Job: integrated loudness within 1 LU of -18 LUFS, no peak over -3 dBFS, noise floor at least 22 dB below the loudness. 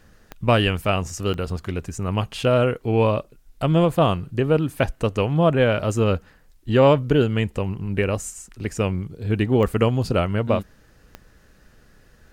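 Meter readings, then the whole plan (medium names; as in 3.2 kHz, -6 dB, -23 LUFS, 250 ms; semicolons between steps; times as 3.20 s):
clicks found 4; loudness -21.5 LUFS; peak level -5.0 dBFS; loudness target -18.0 LUFS
-> de-click; trim +3.5 dB; peak limiter -3 dBFS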